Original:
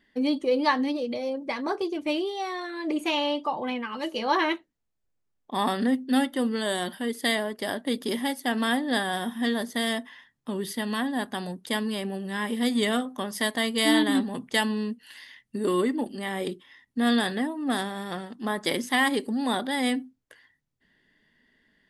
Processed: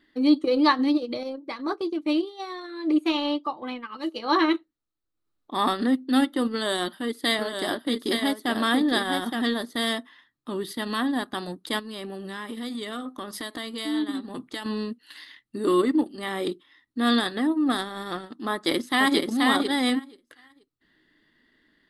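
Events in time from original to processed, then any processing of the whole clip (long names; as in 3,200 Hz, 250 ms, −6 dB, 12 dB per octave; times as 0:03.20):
0:01.23–0:04.54: expander for the loud parts, over −37 dBFS
0:06.52–0:09.42: single-tap delay 868 ms −5.5 dB
0:11.79–0:14.66: downward compressor, threshold −31 dBFS
0:18.52–0:19.25: delay throw 480 ms, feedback 15%, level −2.5 dB
whole clip: thirty-one-band graphic EQ 200 Hz −3 dB, 315 Hz +12 dB, 1,250 Hz +10 dB, 4,000 Hz +9 dB, 6,300 Hz −3 dB; transient designer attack −3 dB, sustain −7 dB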